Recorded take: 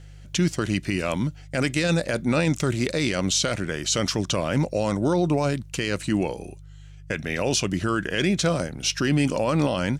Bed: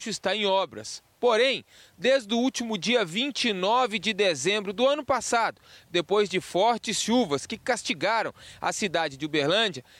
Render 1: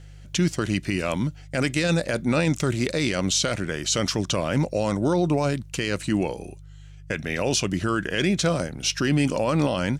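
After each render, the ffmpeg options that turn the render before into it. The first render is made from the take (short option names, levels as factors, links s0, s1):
-af anull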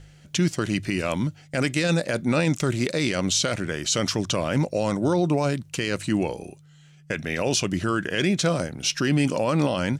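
-af "bandreject=f=50:t=h:w=4,bandreject=f=100:t=h:w=4"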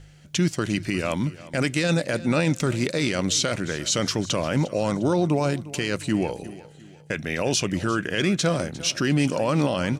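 -af "aecho=1:1:353|706|1059:0.126|0.0504|0.0201"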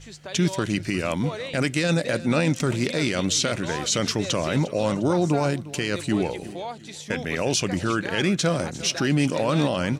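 -filter_complex "[1:a]volume=0.266[s0];[0:a][s0]amix=inputs=2:normalize=0"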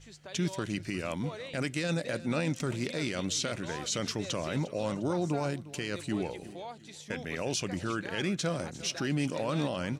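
-af "volume=0.355"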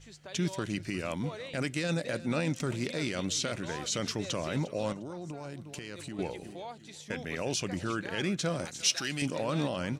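-filter_complex "[0:a]asettb=1/sr,asplit=3[s0][s1][s2];[s0]atrim=end=4.924[s3];[s1]atrim=start=4.92:end=6.19,asetpts=PTS-STARTPTS,afade=t=in:d=0.004:c=qsin,afade=t=out:st=1.266:d=0.004:c=qsin,acompressor=threshold=0.0158:ratio=10:attack=3.2:release=140:knee=1:detection=peak[s4];[s2]atrim=start=6.186[s5];[s3][s4]acrossfade=d=0.004:c1=hsin:c2=qsin[s6];[s6][s5]acrossfade=d=0.004:c1=qsin:c2=hsin,asettb=1/sr,asplit=3[s7][s8][s9];[s7]atrim=end=8.654[s10];[s8]atrim=start=8.65:end=9.22,asetpts=PTS-STARTPTS,afade=t=in:d=0.004:c=qsin,afade=t=out:st=0.566:d=0.004:c=qsin,tiltshelf=f=1300:g=-8.5[s11];[s9]atrim=start=9.216[s12];[s10][s11]acrossfade=d=0.004:c1=hsin:c2=qsin[s13];[s13][s12]acrossfade=d=0.004:c1=qsin:c2=hsin"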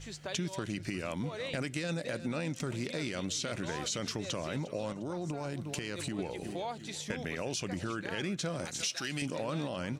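-filter_complex "[0:a]asplit=2[s0][s1];[s1]alimiter=level_in=1.06:limit=0.0631:level=0:latency=1:release=65,volume=0.944,volume=1.26[s2];[s0][s2]amix=inputs=2:normalize=0,acompressor=threshold=0.0224:ratio=5"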